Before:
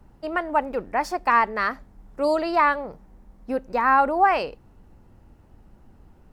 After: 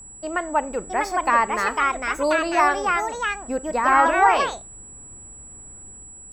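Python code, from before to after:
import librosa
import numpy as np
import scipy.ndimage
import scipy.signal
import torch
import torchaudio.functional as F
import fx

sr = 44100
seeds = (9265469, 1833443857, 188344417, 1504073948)

y = fx.rev_schroeder(x, sr, rt60_s=0.3, comb_ms=29, drr_db=18.5)
y = fx.echo_pitch(y, sr, ms=704, semitones=3, count=2, db_per_echo=-3.0)
y = y + 10.0 ** (-40.0 / 20.0) * np.sin(2.0 * np.pi * 7800.0 * np.arange(len(y)) / sr)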